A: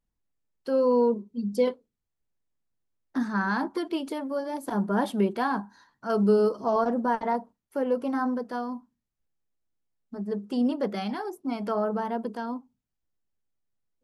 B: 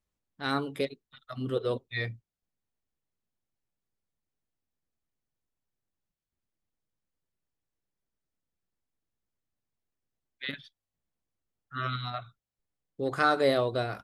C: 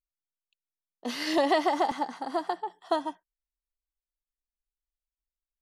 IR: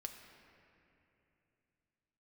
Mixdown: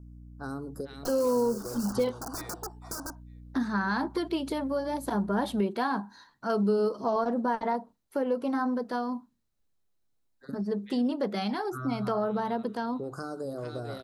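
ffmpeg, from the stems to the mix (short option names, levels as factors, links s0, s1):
-filter_complex "[0:a]equalizer=f=4000:w=5.4:g=7,adelay=400,volume=1.33[s0];[1:a]acrossover=split=490|3000[s1][s2][s3];[s2]acompressor=threshold=0.0126:ratio=6[s4];[s1][s4][s3]amix=inputs=3:normalize=0,volume=1.12,asplit=2[s5][s6];[s6]volume=0.188[s7];[2:a]aeval=exprs='(mod(26.6*val(0)+1,2)-1)/26.6':c=same,aeval=exprs='val(0)+0.00398*(sin(2*PI*60*n/s)+sin(2*PI*2*60*n/s)/2+sin(2*PI*3*60*n/s)/3+sin(2*PI*4*60*n/s)/4+sin(2*PI*5*60*n/s)/5)':c=same,volume=1.26[s8];[s5][s8]amix=inputs=2:normalize=0,asuperstop=centerf=2700:order=12:qfactor=0.85,acompressor=threshold=0.0224:ratio=6,volume=1[s9];[s7]aecho=0:1:449|898|1347|1796:1|0.23|0.0529|0.0122[s10];[s0][s9][s10]amix=inputs=3:normalize=0,acompressor=threshold=0.0398:ratio=2"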